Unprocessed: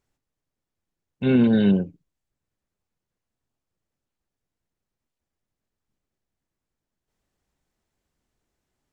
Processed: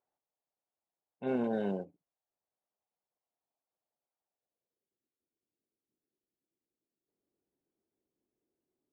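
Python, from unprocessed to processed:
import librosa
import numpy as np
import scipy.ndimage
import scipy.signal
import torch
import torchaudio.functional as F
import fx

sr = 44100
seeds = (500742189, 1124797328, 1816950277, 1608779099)

y = fx.cvsd(x, sr, bps=64000, at=(1.27, 1.85))
y = fx.filter_sweep_bandpass(y, sr, from_hz=730.0, to_hz=350.0, start_s=4.32, end_s=4.99, q=2.4)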